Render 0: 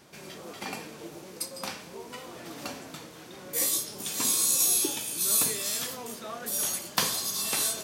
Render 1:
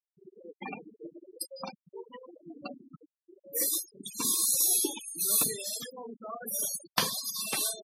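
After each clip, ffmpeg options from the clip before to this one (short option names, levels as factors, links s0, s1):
-af "afftfilt=real='re*gte(hypot(re,im),0.0398)':imag='im*gte(hypot(re,im),0.0398)':win_size=1024:overlap=0.75,equalizer=f=7300:w=2.5:g=-6"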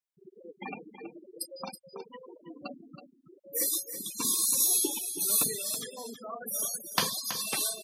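-af "aecho=1:1:325:0.299"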